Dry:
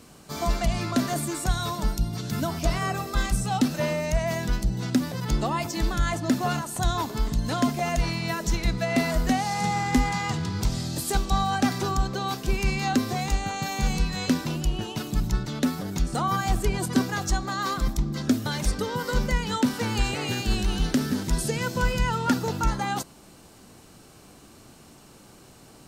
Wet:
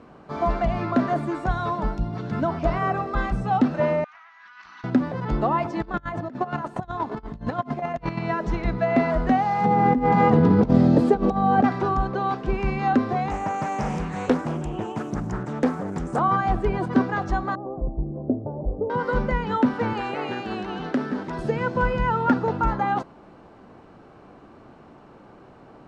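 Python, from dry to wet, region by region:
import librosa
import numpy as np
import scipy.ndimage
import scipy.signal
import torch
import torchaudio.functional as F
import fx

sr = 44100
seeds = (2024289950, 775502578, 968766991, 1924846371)

y = fx.chain(x, sr, fx.lower_of_two(delay_ms=4.1),
    fx.ellip_bandpass(low_hz=1200.0, high_hz=6200.0, order=3, stop_db=40),
    fx.over_compress(threshold_db=-48.0, ratio=-1.0), at=(4.04, 4.84))
y = fx.chain(y, sr, fx.over_compress(threshold_db=-28.0, ratio=-0.5),
    fx.chopper(hz=8.5, depth_pct=60, duty_pct=30), at=(5.82, 8.19))
y = fx.chain(y, sr, fx.over_compress(threshold_db=-29.0, ratio=-1.0),
    fx.small_body(hz=(240.0, 460.0), ring_ms=25, db=15), at=(9.65, 11.64))
y = fx.chain(y, sr, fx.highpass(hz=78.0, slope=12),
    fx.high_shelf_res(hz=5800.0, db=10.5, q=3.0),
    fx.doppler_dist(depth_ms=0.82), at=(13.31, 16.19))
y = fx.chain(y, sr, fx.steep_lowpass(hz=720.0, slope=36),
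    fx.peak_eq(hz=210.0, db=-8.5, octaves=0.7), at=(17.55, 18.9))
y = fx.chain(y, sr, fx.highpass(hz=110.0, slope=12),
    fx.low_shelf(hz=180.0, db=-11.0), at=(19.93, 21.39))
y = scipy.signal.sosfilt(scipy.signal.butter(2, 1300.0, 'lowpass', fs=sr, output='sos'), y)
y = fx.low_shelf(y, sr, hz=240.0, db=-9.5)
y = y * 10.0 ** (7.5 / 20.0)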